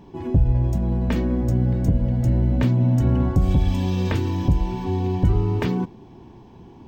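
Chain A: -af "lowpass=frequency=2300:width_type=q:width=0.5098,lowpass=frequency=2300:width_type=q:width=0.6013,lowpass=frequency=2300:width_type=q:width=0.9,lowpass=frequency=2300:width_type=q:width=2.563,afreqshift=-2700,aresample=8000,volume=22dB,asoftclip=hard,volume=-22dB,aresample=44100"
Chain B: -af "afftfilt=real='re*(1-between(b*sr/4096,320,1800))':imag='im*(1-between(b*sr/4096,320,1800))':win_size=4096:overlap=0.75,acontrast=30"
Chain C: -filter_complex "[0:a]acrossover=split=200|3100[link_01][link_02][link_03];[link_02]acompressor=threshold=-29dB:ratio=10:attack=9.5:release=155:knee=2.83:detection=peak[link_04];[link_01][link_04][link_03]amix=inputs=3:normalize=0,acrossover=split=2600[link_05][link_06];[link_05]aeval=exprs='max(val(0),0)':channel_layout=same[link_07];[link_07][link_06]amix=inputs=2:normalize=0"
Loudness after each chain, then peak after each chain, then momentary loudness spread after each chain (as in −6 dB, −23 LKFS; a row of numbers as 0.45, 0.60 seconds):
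−21.5, −17.0, −27.0 LKFS; −17.5, −4.5, −8.5 dBFS; 3, 5, 6 LU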